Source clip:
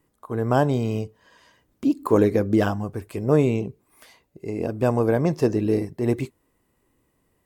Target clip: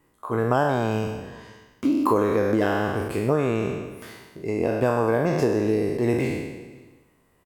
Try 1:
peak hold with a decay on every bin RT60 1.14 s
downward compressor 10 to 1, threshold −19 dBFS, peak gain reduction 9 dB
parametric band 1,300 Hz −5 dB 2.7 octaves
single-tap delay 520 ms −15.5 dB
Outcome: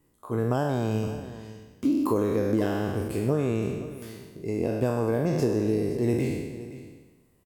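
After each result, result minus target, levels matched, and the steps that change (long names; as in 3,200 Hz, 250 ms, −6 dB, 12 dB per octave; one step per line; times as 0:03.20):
echo-to-direct +10 dB; 1,000 Hz band −5.0 dB
change: single-tap delay 520 ms −25.5 dB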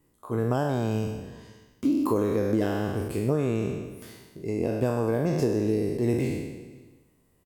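1,000 Hz band −5.5 dB
change: parametric band 1,300 Hz +5 dB 2.7 octaves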